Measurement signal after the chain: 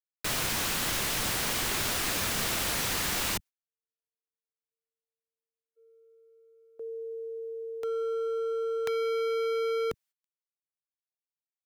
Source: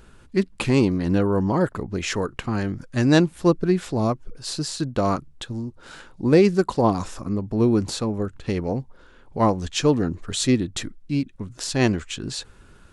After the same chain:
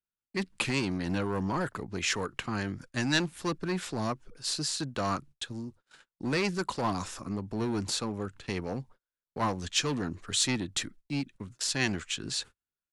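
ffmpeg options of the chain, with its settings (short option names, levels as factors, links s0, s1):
-filter_complex "[0:a]agate=range=0.00708:threshold=0.0112:ratio=16:detection=peak,lowshelf=f=64:g=-8.5,acrossover=split=150|1200[s0][s1][s2];[s0]asplit=2[s3][s4];[s4]adelay=21,volume=0.237[s5];[s3][s5]amix=inputs=2:normalize=0[s6];[s1]volume=13.3,asoftclip=hard,volume=0.075[s7];[s2]acontrast=64[s8];[s6][s7][s8]amix=inputs=3:normalize=0,volume=0.422"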